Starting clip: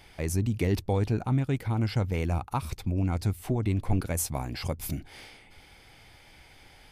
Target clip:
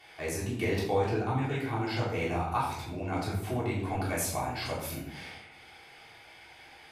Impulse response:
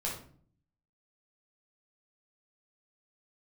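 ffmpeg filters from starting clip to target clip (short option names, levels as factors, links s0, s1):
-filter_complex "[0:a]highpass=f=1000:p=1,highshelf=f=3800:g=-9.5[s0];[1:a]atrim=start_sample=2205,asetrate=30429,aresample=44100[s1];[s0][s1]afir=irnorm=-1:irlink=0,volume=1.26"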